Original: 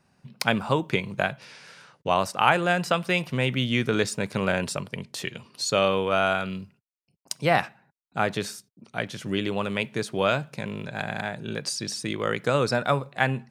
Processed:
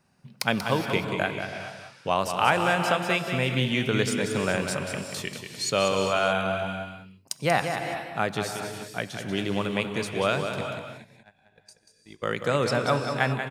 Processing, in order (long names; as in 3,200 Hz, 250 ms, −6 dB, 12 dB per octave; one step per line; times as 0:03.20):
0:10.61–0:12.23: noise gate −25 dBFS, range −41 dB
high-shelf EQ 8,600 Hz +4.5 dB
single-tap delay 187 ms −7.5 dB
reverb whose tail is shaped and stops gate 450 ms rising, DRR 7 dB
level −2 dB